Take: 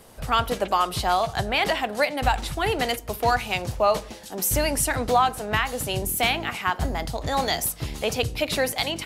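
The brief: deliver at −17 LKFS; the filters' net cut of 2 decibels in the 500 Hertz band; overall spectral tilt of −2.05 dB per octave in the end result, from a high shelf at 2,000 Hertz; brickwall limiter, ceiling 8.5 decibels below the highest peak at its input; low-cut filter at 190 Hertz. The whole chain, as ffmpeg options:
ffmpeg -i in.wav -af "highpass=190,equalizer=frequency=500:width_type=o:gain=-3,highshelf=frequency=2000:gain=5.5,volume=8dB,alimiter=limit=-5.5dB:level=0:latency=1" out.wav

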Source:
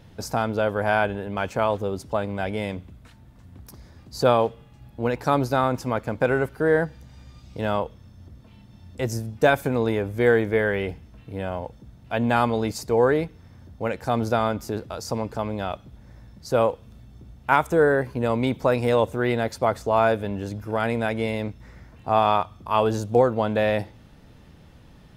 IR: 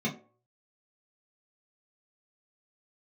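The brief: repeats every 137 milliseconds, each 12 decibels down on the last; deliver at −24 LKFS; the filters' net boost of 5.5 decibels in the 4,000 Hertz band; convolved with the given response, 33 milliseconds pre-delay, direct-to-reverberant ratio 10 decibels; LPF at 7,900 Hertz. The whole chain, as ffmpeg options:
-filter_complex "[0:a]lowpass=7900,equalizer=frequency=4000:width_type=o:gain=7,aecho=1:1:137|274|411:0.251|0.0628|0.0157,asplit=2[link_01][link_02];[1:a]atrim=start_sample=2205,adelay=33[link_03];[link_02][link_03]afir=irnorm=-1:irlink=0,volume=-17dB[link_04];[link_01][link_04]amix=inputs=2:normalize=0,volume=-2dB"

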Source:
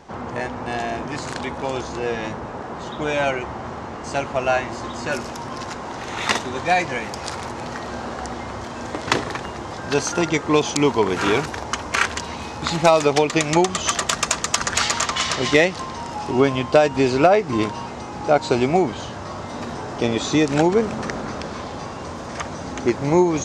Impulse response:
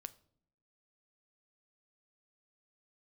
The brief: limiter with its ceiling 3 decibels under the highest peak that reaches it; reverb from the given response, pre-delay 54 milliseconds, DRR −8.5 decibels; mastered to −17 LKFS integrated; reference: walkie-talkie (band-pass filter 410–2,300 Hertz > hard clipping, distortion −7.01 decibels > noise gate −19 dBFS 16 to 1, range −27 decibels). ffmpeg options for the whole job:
-filter_complex "[0:a]alimiter=limit=-7.5dB:level=0:latency=1,asplit=2[link_01][link_02];[1:a]atrim=start_sample=2205,adelay=54[link_03];[link_02][link_03]afir=irnorm=-1:irlink=0,volume=13.5dB[link_04];[link_01][link_04]amix=inputs=2:normalize=0,highpass=410,lowpass=2300,asoftclip=type=hard:threshold=-13.5dB,agate=range=-27dB:threshold=-19dB:ratio=16,volume=2.5dB"

